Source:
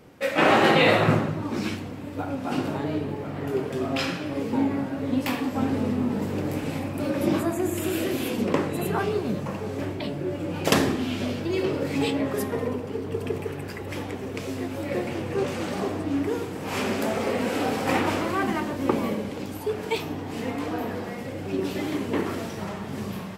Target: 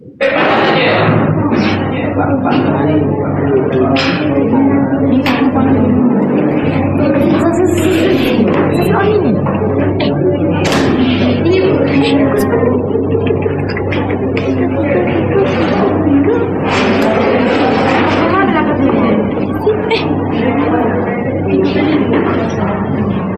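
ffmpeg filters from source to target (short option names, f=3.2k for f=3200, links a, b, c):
-filter_complex "[0:a]asettb=1/sr,asplit=3[a][b][c];[a]atrim=end=5.994[d];[b]atrim=start=5.99:end=6.63,asetpts=PTS-STARTPTS,afade=t=in:d=0.004:c=qsin,afade=t=out:st=0.636:d=0.004:c=qsin,highpass=f=150:w=0.5412,highpass=f=150:w=1.3066[e];[c]atrim=start=6.626[f];[d][e]acrossfade=d=0.004:c1=hsin:c2=qsin[g];[g][f]acrossfade=d=0.004:c1=qsin:c2=hsin,asplit=2[h][i];[i]adelay=1158,lowpass=f=3.7k:p=1,volume=-19.5dB,asplit=2[j][k];[k]adelay=1158,lowpass=f=3.7k:p=1,volume=0.31,asplit=2[l][m];[m]adelay=1158,lowpass=f=3.7k:p=1,volume=0.31[n];[h][j][l][n]amix=inputs=4:normalize=0,acrossover=split=540|7700[o][p][q];[q]aeval=exprs='max(val(0),0)':c=same[r];[o][p][r]amix=inputs=3:normalize=0,afftdn=nr=32:nf=-42,asplit=2[s][t];[t]acompressor=threshold=-37dB:ratio=6,volume=1dB[u];[s][u]amix=inputs=2:normalize=0,alimiter=level_in=16dB:limit=-1dB:release=50:level=0:latency=1,volume=-1dB"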